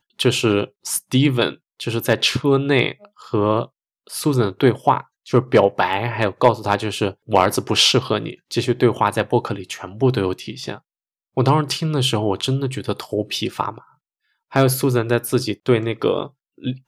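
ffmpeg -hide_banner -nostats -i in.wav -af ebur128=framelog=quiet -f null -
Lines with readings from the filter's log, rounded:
Integrated loudness:
  I:         -19.6 LUFS
  Threshold: -30.1 LUFS
Loudness range:
  LRA:         3.7 LU
  Threshold: -40.1 LUFS
  LRA low:   -22.0 LUFS
  LRA high:  -18.3 LUFS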